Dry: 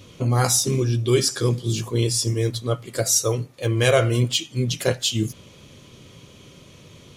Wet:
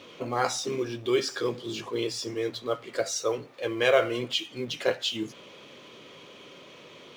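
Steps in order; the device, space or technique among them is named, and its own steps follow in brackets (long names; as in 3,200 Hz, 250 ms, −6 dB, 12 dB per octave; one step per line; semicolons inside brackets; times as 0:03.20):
phone line with mismatched companding (band-pass filter 380–3,400 Hz; mu-law and A-law mismatch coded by mu)
level −2.5 dB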